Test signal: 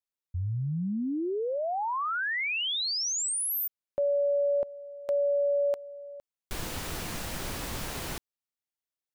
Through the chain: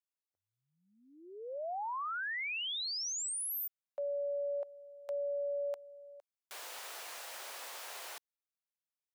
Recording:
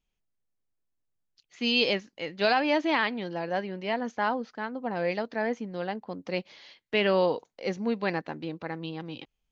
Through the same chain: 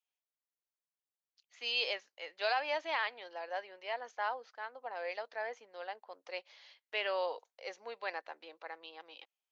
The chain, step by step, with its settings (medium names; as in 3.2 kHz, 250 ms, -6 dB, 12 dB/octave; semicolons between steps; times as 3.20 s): high-pass 550 Hz 24 dB/octave; trim -7.5 dB